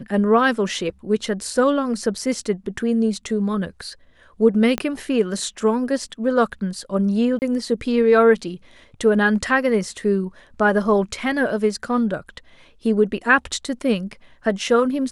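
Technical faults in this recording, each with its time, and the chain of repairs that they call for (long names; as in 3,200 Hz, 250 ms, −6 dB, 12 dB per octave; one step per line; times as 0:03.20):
0:04.78: click −8 dBFS
0:07.39–0:07.42: drop-out 29 ms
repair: click removal
repair the gap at 0:07.39, 29 ms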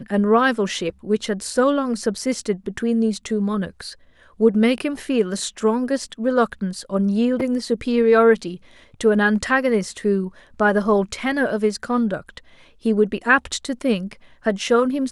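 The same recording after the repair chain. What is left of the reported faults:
0:04.78: click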